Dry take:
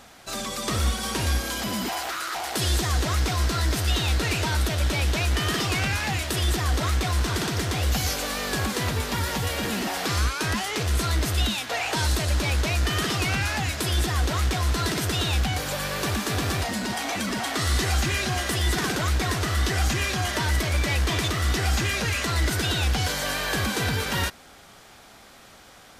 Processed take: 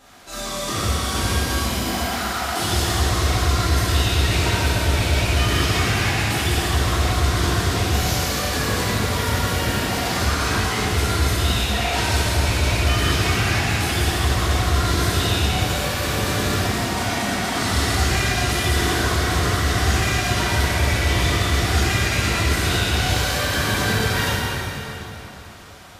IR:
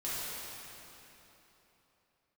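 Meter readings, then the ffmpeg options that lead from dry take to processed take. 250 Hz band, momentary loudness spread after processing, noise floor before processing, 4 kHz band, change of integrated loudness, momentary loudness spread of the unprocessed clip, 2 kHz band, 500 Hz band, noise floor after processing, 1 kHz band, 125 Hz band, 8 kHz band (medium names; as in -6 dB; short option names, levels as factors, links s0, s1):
+5.0 dB, 3 LU, -49 dBFS, +4.5 dB, +5.0 dB, 3 LU, +5.0 dB, +5.5 dB, -33 dBFS, +5.5 dB, +5.0 dB, +4.0 dB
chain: -filter_complex "[1:a]atrim=start_sample=2205[s0];[0:a][s0]afir=irnorm=-1:irlink=0"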